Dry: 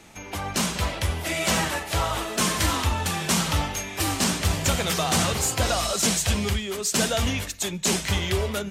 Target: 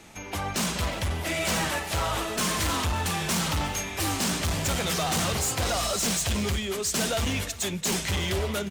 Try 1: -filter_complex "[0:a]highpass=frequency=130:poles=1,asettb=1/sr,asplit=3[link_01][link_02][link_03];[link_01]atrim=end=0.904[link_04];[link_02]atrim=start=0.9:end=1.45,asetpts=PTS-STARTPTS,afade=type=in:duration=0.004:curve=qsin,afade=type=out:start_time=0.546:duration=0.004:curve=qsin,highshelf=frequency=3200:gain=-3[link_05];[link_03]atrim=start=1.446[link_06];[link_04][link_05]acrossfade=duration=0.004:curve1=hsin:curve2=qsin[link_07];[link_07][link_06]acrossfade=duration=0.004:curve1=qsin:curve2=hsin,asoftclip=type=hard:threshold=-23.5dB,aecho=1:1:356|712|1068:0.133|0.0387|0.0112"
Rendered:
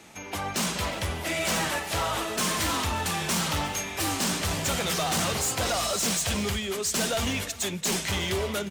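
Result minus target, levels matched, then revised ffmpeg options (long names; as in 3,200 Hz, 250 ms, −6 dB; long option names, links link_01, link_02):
125 Hz band −3.0 dB
-filter_complex "[0:a]asettb=1/sr,asplit=3[link_01][link_02][link_03];[link_01]atrim=end=0.904[link_04];[link_02]atrim=start=0.9:end=1.45,asetpts=PTS-STARTPTS,afade=type=in:duration=0.004:curve=qsin,afade=type=out:start_time=0.546:duration=0.004:curve=qsin,highshelf=frequency=3200:gain=-3[link_05];[link_03]atrim=start=1.446[link_06];[link_04][link_05]acrossfade=duration=0.004:curve1=hsin:curve2=qsin[link_07];[link_07][link_06]acrossfade=duration=0.004:curve1=qsin:curve2=hsin,asoftclip=type=hard:threshold=-23.5dB,aecho=1:1:356|712|1068:0.133|0.0387|0.0112"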